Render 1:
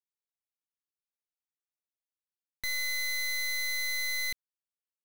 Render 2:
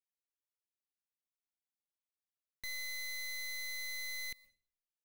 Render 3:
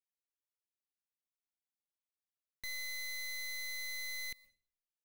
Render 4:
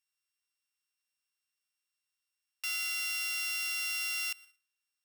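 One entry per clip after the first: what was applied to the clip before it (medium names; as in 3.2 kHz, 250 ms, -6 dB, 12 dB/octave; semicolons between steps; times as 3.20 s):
band-stop 1.4 kHz, Q 5.2; on a send at -22 dB: reverberation RT60 0.45 s, pre-delay 117 ms; on the sum: trim -9 dB
no audible change
sorted samples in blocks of 16 samples; inverse Chebyshev high-pass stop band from 560 Hz, stop band 40 dB; trim +8 dB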